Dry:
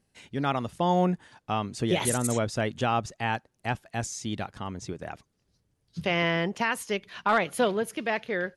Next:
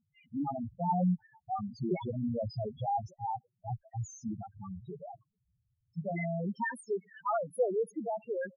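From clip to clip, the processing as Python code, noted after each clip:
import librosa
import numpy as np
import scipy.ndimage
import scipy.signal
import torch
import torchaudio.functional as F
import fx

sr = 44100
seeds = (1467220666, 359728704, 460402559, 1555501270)

y = fx.spec_topn(x, sr, count=2)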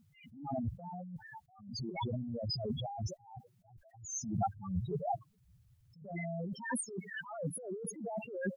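y = fx.over_compress(x, sr, threshold_db=-43.0, ratio=-1.0)
y = fx.attack_slew(y, sr, db_per_s=100.0)
y = y * librosa.db_to_amplitude(6.0)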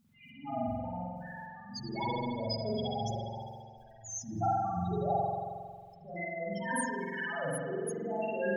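y = fx.peak_eq(x, sr, hz=97.0, db=-8.0, octaves=2.7)
y = fx.rev_spring(y, sr, rt60_s=1.8, pass_ms=(45,), chirp_ms=45, drr_db=-7.0)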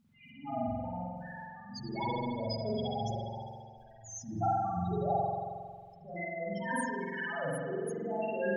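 y = fx.high_shelf(x, sr, hz=6000.0, db=-8.5)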